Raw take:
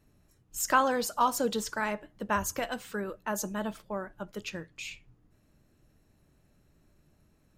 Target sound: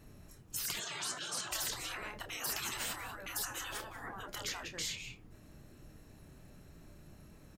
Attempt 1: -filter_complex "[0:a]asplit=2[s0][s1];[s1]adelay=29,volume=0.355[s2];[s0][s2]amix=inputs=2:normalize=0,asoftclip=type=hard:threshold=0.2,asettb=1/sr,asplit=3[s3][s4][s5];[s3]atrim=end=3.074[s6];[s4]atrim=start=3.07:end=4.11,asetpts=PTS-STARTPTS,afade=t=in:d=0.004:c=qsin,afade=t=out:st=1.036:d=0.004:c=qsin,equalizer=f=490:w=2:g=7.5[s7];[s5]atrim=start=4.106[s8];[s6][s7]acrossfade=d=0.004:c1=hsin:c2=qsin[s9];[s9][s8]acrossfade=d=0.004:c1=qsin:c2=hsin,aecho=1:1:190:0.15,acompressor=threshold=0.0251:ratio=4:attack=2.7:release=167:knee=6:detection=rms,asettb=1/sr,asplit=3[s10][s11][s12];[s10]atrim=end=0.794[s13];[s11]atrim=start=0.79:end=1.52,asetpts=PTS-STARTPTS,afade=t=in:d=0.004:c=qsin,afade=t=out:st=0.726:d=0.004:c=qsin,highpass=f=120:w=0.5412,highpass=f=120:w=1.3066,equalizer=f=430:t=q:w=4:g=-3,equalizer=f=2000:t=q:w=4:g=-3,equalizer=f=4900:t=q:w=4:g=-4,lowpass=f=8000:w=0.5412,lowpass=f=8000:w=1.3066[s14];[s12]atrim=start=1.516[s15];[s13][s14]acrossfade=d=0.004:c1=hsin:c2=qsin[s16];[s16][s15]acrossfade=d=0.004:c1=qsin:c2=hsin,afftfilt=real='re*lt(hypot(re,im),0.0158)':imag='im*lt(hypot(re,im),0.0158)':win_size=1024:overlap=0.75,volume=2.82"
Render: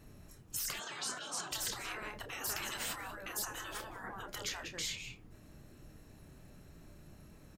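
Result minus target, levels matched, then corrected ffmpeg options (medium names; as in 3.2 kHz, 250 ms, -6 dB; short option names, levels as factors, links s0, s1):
compression: peak gain reduction +6 dB
-filter_complex "[0:a]asplit=2[s0][s1];[s1]adelay=29,volume=0.355[s2];[s0][s2]amix=inputs=2:normalize=0,asoftclip=type=hard:threshold=0.2,asettb=1/sr,asplit=3[s3][s4][s5];[s3]atrim=end=3.074[s6];[s4]atrim=start=3.07:end=4.11,asetpts=PTS-STARTPTS,afade=t=in:d=0.004:c=qsin,afade=t=out:st=1.036:d=0.004:c=qsin,equalizer=f=490:w=2:g=7.5[s7];[s5]atrim=start=4.106[s8];[s6][s7]acrossfade=d=0.004:c1=hsin:c2=qsin[s9];[s9][s8]acrossfade=d=0.004:c1=qsin:c2=hsin,aecho=1:1:190:0.15,acompressor=threshold=0.0631:ratio=4:attack=2.7:release=167:knee=6:detection=rms,asettb=1/sr,asplit=3[s10][s11][s12];[s10]atrim=end=0.794[s13];[s11]atrim=start=0.79:end=1.52,asetpts=PTS-STARTPTS,afade=t=in:d=0.004:c=qsin,afade=t=out:st=0.726:d=0.004:c=qsin,highpass=f=120:w=0.5412,highpass=f=120:w=1.3066,equalizer=f=430:t=q:w=4:g=-3,equalizer=f=2000:t=q:w=4:g=-3,equalizer=f=4900:t=q:w=4:g=-4,lowpass=f=8000:w=0.5412,lowpass=f=8000:w=1.3066[s14];[s12]atrim=start=1.516[s15];[s13][s14]acrossfade=d=0.004:c1=hsin:c2=qsin[s16];[s16][s15]acrossfade=d=0.004:c1=qsin:c2=hsin,afftfilt=real='re*lt(hypot(re,im),0.0158)':imag='im*lt(hypot(re,im),0.0158)':win_size=1024:overlap=0.75,volume=2.82"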